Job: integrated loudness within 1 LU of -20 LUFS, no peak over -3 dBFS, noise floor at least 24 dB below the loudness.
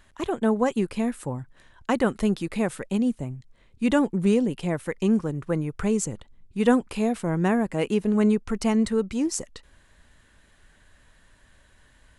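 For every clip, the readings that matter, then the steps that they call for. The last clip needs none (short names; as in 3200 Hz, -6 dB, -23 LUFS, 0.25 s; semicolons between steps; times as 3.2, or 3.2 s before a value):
loudness -25.0 LUFS; peak -6.0 dBFS; loudness target -20.0 LUFS
-> gain +5 dB; limiter -3 dBFS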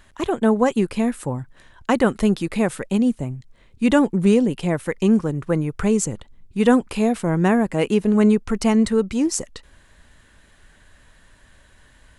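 loudness -20.0 LUFS; peak -3.0 dBFS; noise floor -54 dBFS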